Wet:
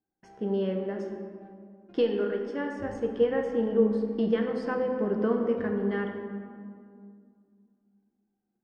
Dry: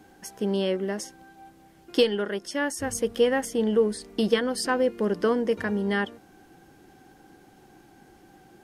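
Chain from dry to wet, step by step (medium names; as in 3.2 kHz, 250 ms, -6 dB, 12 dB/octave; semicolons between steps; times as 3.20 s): gate -47 dBFS, range -31 dB; tape spacing loss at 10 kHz 36 dB; on a send: reverberation RT60 2.1 s, pre-delay 4 ms, DRR 2 dB; on the sum: trim -3.5 dB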